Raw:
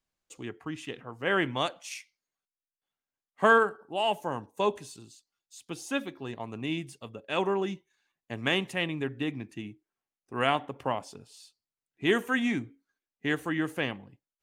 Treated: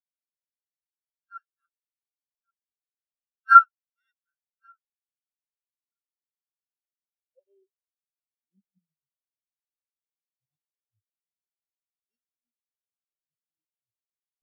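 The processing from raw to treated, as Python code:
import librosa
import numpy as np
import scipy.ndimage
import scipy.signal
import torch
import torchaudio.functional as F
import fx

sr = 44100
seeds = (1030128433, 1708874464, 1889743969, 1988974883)

p1 = fx.bit_reversed(x, sr, seeds[0], block=16)
p2 = fx.quant_dither(p1, sr, seeds[1], bits=8, dither='triangular')
p3 = fx.weighting(p2, sr, curve='ITU-R 468')
p4 = fx.auto_swell(p3, sr, attack_ms=109.0)
p5 = p4 + fx.echo_single(p4, sr, ms=1132, db=-10.5, dry=0)
p6 = np.maximum(p5, 0.0)
p7 = fx.filter_sweep_highpass(p6, sr, from_hz=1400.0, to_hz=100.0, start_s=5.94, end_s=9.66, q=7.1)
p8 = fx.spectral_expand(p7, sr, expansion=4.0)
y = F.gain(torch.from_numpy(p8), 1.0).numpy()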